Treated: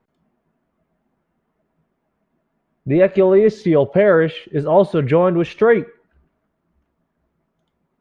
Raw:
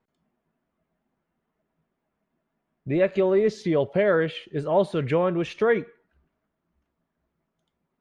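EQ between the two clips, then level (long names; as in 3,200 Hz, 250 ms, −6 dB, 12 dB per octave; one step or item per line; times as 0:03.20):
high-shelf EQ 3,100 Hz −10 dB
+8.5 dB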